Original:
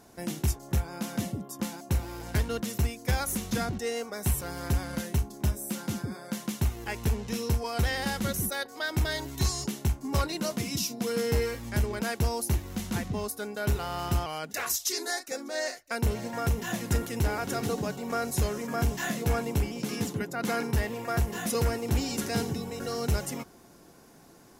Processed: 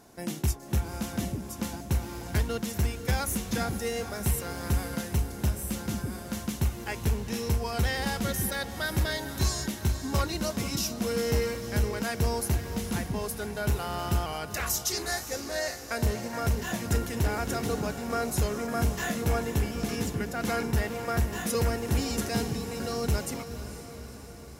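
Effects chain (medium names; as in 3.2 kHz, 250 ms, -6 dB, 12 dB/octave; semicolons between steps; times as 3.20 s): echo that smears into a reverb 489 ms, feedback 61%, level -11 dB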